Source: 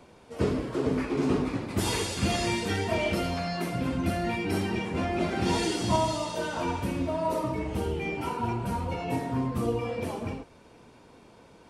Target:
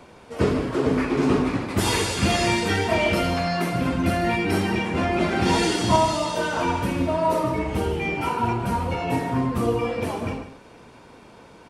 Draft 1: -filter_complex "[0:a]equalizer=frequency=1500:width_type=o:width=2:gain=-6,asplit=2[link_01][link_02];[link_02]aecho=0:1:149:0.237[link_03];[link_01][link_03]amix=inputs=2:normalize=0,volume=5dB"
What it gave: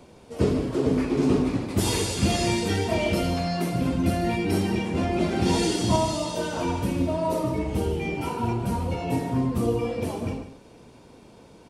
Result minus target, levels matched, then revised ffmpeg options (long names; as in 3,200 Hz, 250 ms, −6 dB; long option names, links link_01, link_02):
2,000 Hz band −5.5 dB
-filter_complex "[0:a]equalizer=frequency=1500:width_type=o:width=2:gain=3.5,asplit=2[link_01][link_02];[link_02]aecho=0:1:149:0.237[link_03];[link_01][link_03]amix=inputs=2:normalize=0,volume=5dB"